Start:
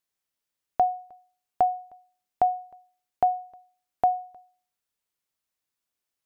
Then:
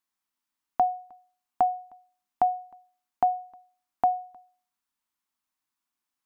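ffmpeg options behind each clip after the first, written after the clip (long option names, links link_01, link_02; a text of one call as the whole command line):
ffmpeg -i in.wav -af "equalizer=frequency=125:width_type=o:width=1:gain=-8,equalizer=frequency=250:width_type=o:width=1:gain=9,equalizer=frequency=500:width_type=o:width=1:gain=-10,equalizer=frequency=1000:width_type=o:width=1:gain=9,volume=-2dB" out.wav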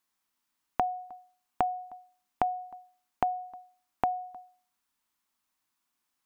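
ffmpeg -i in.wav -af "acompressor=threshold=-30dB:ratio=10,volume=5dB" out.wav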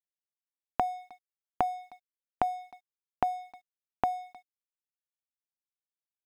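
ffmpeg -i in.wav -af "aeval=exprs='sgn(val(0))*max(abs(val(0))-0.00335,0)':channel_layout=same" out.wav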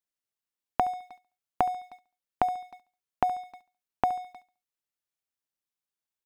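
ffmpeg -i in.wav -af "aecho=1:1:70|140|210:0.112|0.0359|0.0115,volume=2.5dB" out.wav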